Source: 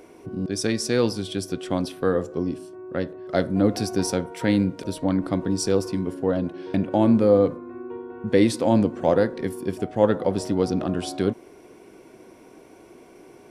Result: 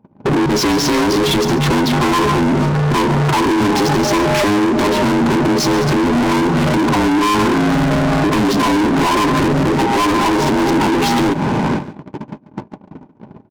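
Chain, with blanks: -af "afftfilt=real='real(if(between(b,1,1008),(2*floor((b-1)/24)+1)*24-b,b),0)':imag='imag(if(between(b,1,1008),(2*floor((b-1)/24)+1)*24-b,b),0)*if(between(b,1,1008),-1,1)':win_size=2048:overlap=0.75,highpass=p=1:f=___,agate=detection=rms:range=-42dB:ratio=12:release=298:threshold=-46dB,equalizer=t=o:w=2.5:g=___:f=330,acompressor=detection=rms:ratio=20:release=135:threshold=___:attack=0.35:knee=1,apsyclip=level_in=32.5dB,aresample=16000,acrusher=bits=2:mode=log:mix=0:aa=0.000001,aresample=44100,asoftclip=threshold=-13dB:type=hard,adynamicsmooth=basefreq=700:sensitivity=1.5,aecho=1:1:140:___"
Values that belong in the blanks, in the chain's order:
250, 10, -25dB, 0.158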